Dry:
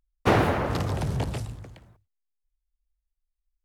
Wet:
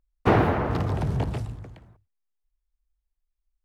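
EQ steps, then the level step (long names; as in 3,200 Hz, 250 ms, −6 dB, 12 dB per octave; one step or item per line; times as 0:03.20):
high-shelf EQ 2,800 Hz −10 dB
notch filter 550 Hz, Q 12
dynamic equaliser 8,500 Hz, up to −5 dB, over −51 dBFS, Q 0.72
+2.0 dB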